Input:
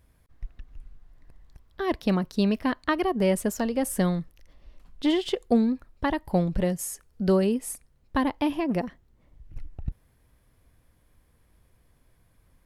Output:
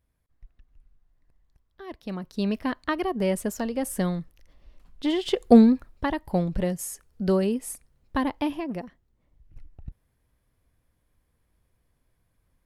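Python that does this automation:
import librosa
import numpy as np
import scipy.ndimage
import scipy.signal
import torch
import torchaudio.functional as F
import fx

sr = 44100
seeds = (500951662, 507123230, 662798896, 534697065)

y = fx.gain(x, sr, db=fx.line((1.96, -13.0), (2.5, -2.0), (5.13, -2.0), (5.58, 8.5), (6.08, -1.0), (8.42, -1.0), (8.85, -8.0)))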